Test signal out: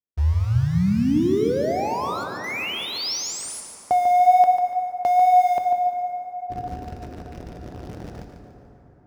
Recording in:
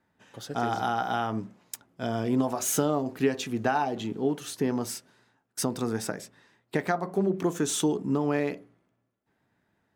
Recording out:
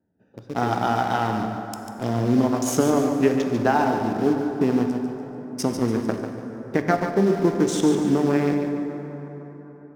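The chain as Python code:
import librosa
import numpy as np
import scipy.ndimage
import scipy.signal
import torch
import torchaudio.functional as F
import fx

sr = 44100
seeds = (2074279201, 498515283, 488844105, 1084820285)

p1 = fx.wiener(x, sr, points=41)
p2 = scipy.signal.sosfilt(scipy.signal.butter(4, 43.0, 'highpass', fs=sr, output='sos'), p1)
p3 = fx.quant_dither(p2, sr, seeds[0], bits=6, dither='none')
p4 = p2 + F.gain(torch.from_numpy(p3), -5.0).numpy()
p5 = fx.high_shelf(p4, sr, hz=3600.0, db=-8.5)
p6 = fx.hum_notches(p5, sr, base_hz=50, count=3)
p7 = fx.wow_flutter(p6, sr, seeds[1], rate_hz=2.1, depth_cents=24.0)
p8 = fx.peak_eq(p7, sr, hz=5400.0, db=7.5, octaves=0.48)
p9 = p8 + fx.echo_feedback(p8, sr, ms=145, feedback_pct=38, wet_db=-8, dry=0)
p10 = fx.rev_plate(p9, sr, seeds[2], rt60_s=4.3, hf_ratio=0.45, predelay_ms=0, drr_db=6.0)
y = F.gain(torch.from_numpy(p10), 2.5).numpy()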